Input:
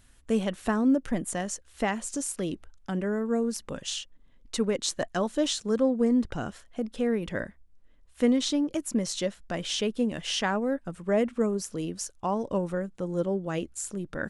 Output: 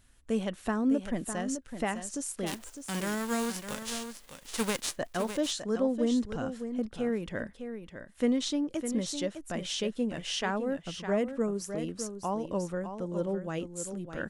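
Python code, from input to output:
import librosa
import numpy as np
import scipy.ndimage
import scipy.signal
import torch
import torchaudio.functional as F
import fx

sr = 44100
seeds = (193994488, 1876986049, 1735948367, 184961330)

y = fx.envelope_flatten(x, sr, power=0.3, at=(2.46, 4.95), fade=0.02)
y = y + 10.0 ** (-9.0 / 20.0) * np.pad(y, (int(606 * sr / 1000.0), 0))[:len(y)]
y = F.gain(torch.from_numpy(y), -4.0).numpy()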